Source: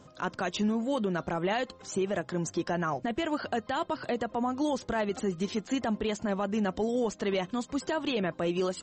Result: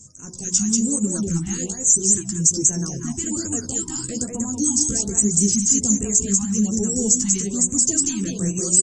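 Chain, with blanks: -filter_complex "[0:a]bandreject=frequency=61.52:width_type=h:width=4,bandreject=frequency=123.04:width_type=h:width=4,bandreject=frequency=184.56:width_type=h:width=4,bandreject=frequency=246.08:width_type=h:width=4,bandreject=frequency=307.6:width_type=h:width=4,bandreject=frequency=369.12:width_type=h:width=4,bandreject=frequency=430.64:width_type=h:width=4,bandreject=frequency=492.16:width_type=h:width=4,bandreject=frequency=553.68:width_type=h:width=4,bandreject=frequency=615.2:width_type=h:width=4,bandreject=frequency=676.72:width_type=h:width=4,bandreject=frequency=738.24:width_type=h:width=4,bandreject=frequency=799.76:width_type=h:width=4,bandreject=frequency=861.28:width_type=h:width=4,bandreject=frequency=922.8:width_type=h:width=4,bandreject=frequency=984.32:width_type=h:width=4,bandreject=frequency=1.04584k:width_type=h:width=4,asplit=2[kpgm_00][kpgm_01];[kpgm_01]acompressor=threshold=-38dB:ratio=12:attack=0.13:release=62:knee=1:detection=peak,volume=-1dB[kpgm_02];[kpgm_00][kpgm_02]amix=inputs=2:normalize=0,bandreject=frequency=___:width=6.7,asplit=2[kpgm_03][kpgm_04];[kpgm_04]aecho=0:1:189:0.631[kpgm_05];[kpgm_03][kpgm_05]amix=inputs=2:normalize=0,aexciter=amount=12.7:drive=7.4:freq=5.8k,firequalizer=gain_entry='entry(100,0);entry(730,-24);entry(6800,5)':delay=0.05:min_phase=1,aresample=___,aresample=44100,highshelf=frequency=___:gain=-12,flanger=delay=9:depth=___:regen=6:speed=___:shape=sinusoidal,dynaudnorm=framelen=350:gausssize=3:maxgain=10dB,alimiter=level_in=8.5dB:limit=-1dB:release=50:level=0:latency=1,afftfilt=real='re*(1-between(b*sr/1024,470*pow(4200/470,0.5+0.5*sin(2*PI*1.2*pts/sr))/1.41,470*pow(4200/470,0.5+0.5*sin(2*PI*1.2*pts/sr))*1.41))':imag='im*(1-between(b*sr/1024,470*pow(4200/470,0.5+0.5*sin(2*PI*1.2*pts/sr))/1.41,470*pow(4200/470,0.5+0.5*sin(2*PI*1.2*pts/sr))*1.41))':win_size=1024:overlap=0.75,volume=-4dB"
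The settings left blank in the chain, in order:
600, 22050, 5.3k, 7.4, 0.89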